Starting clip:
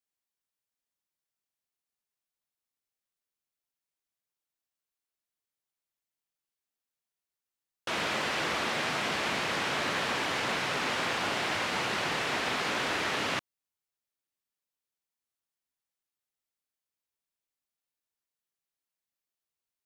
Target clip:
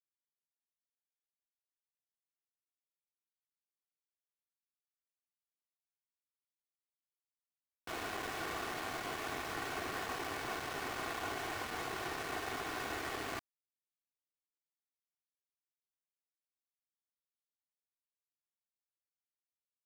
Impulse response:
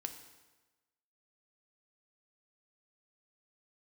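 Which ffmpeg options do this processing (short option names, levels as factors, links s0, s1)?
-af "lowpass=1700,equalizer=f=65:w=1:g=6.5,bandreject=f=60:t=h:w=6,bandreject=f=120:t=h:w=6,bandreject=f=180:t=h:w=6,bandreject=f=240:t=h:w=6,bandreject=f=300:t=h:w=6,bandreject=f=360:t=h:w=6,bandreject=f=420:t=h:w=6,aecho=1:1:2.7:0.65,aeval=exprs='val(0)*gte(abs(val(0)),0.0266)':c=same,volume=0.422"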